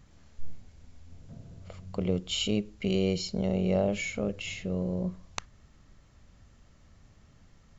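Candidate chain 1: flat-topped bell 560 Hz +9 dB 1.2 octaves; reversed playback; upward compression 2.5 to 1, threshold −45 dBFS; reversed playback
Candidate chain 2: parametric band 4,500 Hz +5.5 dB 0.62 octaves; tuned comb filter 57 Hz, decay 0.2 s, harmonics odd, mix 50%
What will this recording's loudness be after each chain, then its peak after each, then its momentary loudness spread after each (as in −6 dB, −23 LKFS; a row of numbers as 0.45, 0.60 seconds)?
−26.0, −34.5 LKFS; −8.0, −14.0 dBFS; 19, 18 LU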